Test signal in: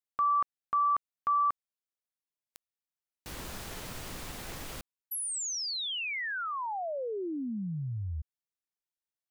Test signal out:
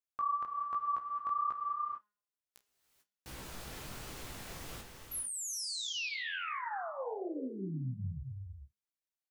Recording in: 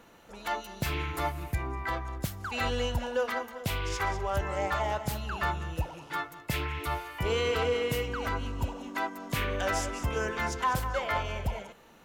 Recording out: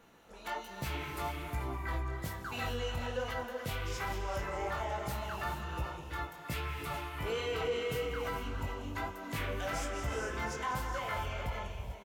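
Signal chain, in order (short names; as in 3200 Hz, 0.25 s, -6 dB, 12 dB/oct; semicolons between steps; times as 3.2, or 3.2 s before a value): de-hum 207.2 Hz, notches 37; chorus 1.2 Hz, delay 15 ms, depth 8 ms; doubler 31 ms -14 dB; non-linear reverb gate 0.47 s rising, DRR 5.5 dB; in parallel at +1.5 dB: limiter -27.5 dBFS; on the sum: gain -9 dB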